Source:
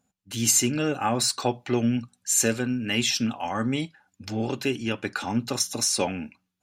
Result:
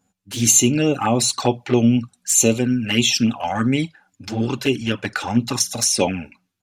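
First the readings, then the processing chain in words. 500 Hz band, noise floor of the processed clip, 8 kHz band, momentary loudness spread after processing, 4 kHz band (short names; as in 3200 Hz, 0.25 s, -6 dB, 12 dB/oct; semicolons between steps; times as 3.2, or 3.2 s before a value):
+6.5 dB, -71 dBFS, +6.5 dB, 10 LU, +5.5 dB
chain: downsampling 32000 Hz; envelope flanger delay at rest 10.7 ms, full sweep at -20.5 dBFS; gain +8.5 dB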